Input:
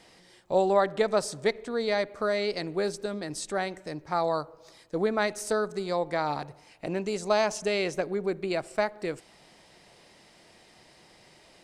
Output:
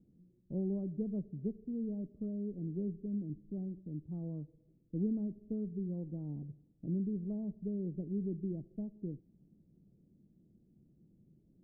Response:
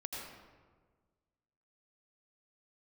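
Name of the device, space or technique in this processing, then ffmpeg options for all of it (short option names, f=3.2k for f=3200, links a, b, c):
the neighbour's flat through the wall: -af "lowpass=f=280:w=0.5412,lowpass=f=280:w=1.3066,equalizer=f=180:t=o:w=0.86:g=5,volume=-3dB"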